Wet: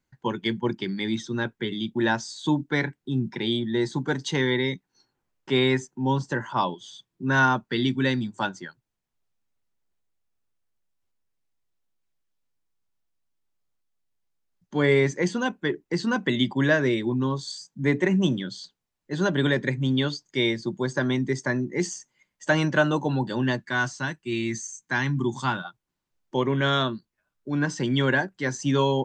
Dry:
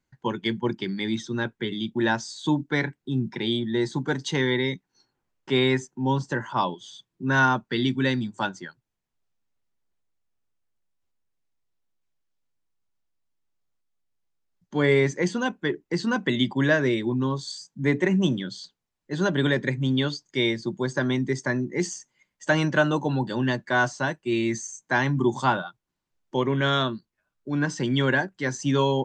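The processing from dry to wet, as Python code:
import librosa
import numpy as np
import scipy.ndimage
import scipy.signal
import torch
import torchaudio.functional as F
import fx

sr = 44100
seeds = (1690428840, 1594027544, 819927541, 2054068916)

y = fx.peak_eq(x, sr, hz=590.0, db=-10.5, octaves=1.3, at=(23.59, 25.65))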